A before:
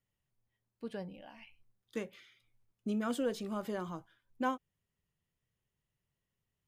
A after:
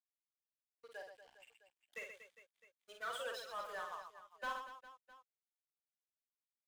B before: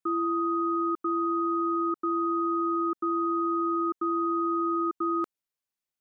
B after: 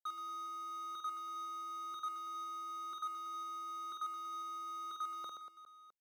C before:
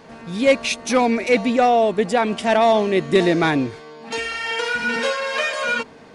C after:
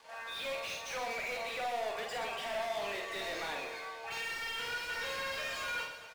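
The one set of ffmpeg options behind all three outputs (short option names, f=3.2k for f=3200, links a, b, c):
-filter_complex "[0:a]acrossover=split=3000[a][b];[b]acompressor=threshold=-38dB:ratio=4:attack=1:release=60[c];[a][c]amix=inputs=2:normalize=0,highpass=f=480:w=0.5412,highpass=f=480:w=1.3066,afftdn=nr=15:nf=-39,aderivative,acrossover=split=730|4100[d][e][f];[e]acompressor=threshold=-48dB:ratio=6[g];[f]flanger=delay=19:depth=4.8:speed=2[h];[d][g][h]amix=inputs=3:normalize=0,asplit=2[i][j];[j]highpass=f=720:p=1,volume=32dB,asoftclip=type=tanh:threshold=-28.5dB[k];[i][k]amix=inputs=2:normalize=0,lowpass=f=3k:p=1,volume=-6dB,aeval=exprs='sgn(val(0))*max(abs(val(0))-0.00168,0)':c=same,asplit=2[l][m];[m]aecho=0:1:50|125|237.5|406.2|659.4:0.631|0.398|0.251|0.158|0.1[n];[l][n]amix=inputs=2:normalize=0,volume=-3dB"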